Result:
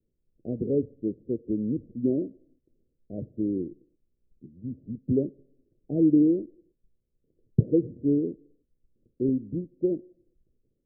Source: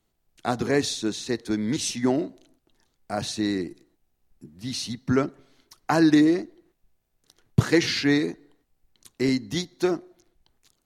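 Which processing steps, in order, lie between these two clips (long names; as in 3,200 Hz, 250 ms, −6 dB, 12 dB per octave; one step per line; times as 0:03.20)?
Butterworth low-pass 560 Hz 72 dB per octave
level −2 dB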